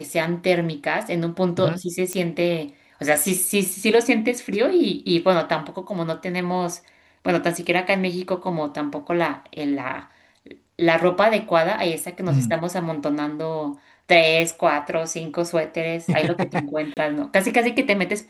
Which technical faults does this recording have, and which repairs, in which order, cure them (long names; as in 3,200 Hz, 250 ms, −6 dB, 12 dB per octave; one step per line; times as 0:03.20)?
0:02.13: click −12 dBFS
0:14.40: click −8 dBFS
0:16.94–0:16.97: drop-out 28 ms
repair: click removal
repair the gap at 0:16.94, 28 ms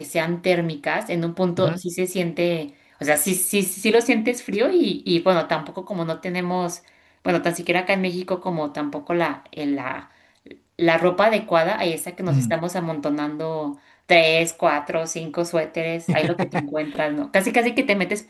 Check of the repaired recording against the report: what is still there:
none of them is left